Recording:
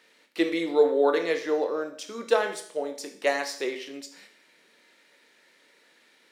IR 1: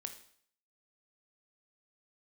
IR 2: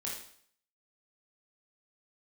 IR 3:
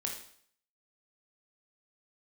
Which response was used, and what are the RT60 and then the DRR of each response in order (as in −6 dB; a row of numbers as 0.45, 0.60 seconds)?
1; 0.60, 0.60, 0.60 seconds; 6.0, −4.5, 0.0 decibels